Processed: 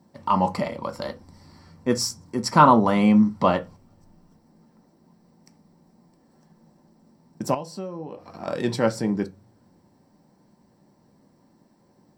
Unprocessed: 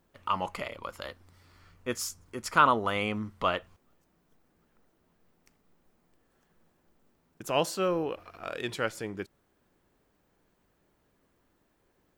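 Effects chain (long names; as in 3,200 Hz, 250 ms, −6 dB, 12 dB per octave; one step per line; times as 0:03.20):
convolution reverb RT60 0.20 s, pre-delay 3 ms, DRR 6.5 dB
0:07.54–0:08.48: downward compressor 16 to 1, threshold −32 dBFS, peak gain reduction 20 dB
level +2.5 dB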